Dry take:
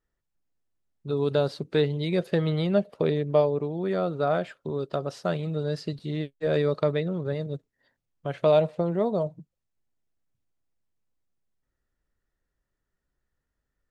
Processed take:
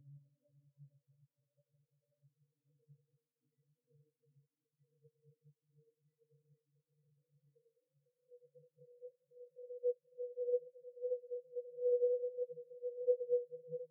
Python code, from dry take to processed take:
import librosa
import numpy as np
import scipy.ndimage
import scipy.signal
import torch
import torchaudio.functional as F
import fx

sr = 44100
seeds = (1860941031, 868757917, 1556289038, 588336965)

y = fx.octave_resonator(x, sr, note='B', decay_s=0.21)
y = fx.echo_wet_bandpass(y, sr, ms=94, feedback_pct=50, hz=420.0, wet_db=-4)
y = fx.paulstretch(y, sr, seeds[0], factor=12.0, window_s=1.0, from_s=1.4)
y = fx.spectral_expand(y, sr, expansion=4.0)
y = F.gain(torch.from_numpy(y), 2.0).numpy()